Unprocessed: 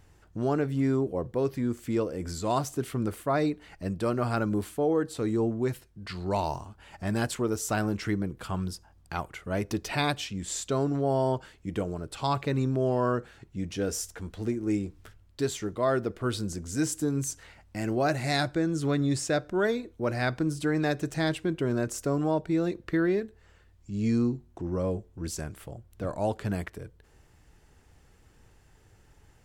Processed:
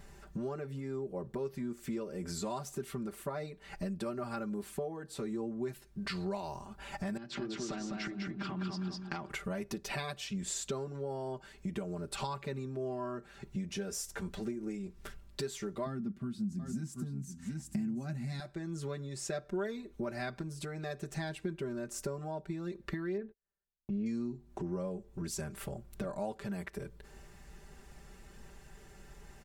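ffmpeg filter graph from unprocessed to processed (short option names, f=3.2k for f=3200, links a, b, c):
-filter_complex "[0:a]asettb=1/sr,asplit=3[a][b][c];[a]atrim=end=7.174[d];[b]atrim=start=7.17:end=9.3,asetpts=PTS-STARTPTS,afade=t=in:d=0.004:c=qsin,afade=t=out:st=2.126:d=0.004:c=qsin,highpass=110,equalizer=f=120:t=q:w=4:g=4,equalizer=f=230:t=q:w=4:g=4,equalizer=f=320:t=q:w=4:g=9,equalizer=f=480:t=q:w=4:g=-9,equalizer=f=920:t=q:w=4:g=-3,lowpass=f=4.9k:w=0.5412,lowpass=f=4.9k:w=1.3066,acompressor=threshold=-34dB:ratio=16:attack=3.2:release=140:knee=1:detection=peak,aecho=1:1:202|404|606|808:0.708|0.205|0.0595|0.0173,atrim=end_sample=93933[e];[c]atrim=start=9.296[f];[d][e]acrossfade=d=0.004:c1=hsin:c2=qsin[g];[g][f]acrossfade=d=0.004:c1=qsin:c2=hsin,asettb=1/sr,asplit=3[h][i][j];[h]atrim=end=15.864[k];[i]atrim=start=15.86:end=18.4,asetpts=PTS-STARTPTS,afade=t=in:d=0.004:c=qsin,afade=t=out:st=2.536:d=0.004:c=qsin,highpass=77,lowshelf=f=320:t=q:w=3:g=12,aecho=1:1:732:0.282,atrim=end_sample=112014[l];[j]atrim=start=18.396[m];[k][l]acrossfade=d=0.004:c1=hsin:c2=qsin[n];[n][m]acrossfade=d=0.004:c1=qsin:c2=hsin,asettb=1/sr,asplit=3[o][p][q];[o]atrim=end=23.174[r];[p]atrim=start=23.17:end=24.06,asetpts=PTS-STARTPTS,afade=t=in:d=0.004:c=qsin,afade=t=out:st=0.886:d=0.004:c=qsin,lowpass=1.8k,equalizer=f=61:w=1.1:g=-7.5,agate=range=-40dB:threshold=-52dB:ratio=16:release=100:detection=peak[s];[q]atrim=start=24.056[t];[r][s]acrossfade=d=0.004:c1=hsin:c2=qsin[u];[u][t]acrossfade=d=0.004:c1=qsin:c2=hsin,acompressor=threshold=-40dB:ratio=16,bandreject=f=3.1k:w=27,aecho=1:1:5.1:0.93,volume=3dB"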